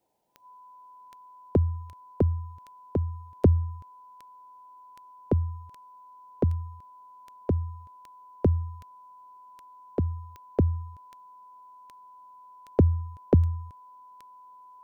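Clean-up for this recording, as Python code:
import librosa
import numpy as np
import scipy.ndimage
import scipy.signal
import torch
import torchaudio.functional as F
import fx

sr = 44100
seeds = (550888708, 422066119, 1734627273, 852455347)

y = fx.fix_declick_ar(x, sr, threshold=10.0)
y = fx.notch(y, sr, hz=1000.0, q=30.0)
y = fx.noise_reduce(y, sr, print_start_s=0.0, print_end_s=0.5, reduce_db=21.0)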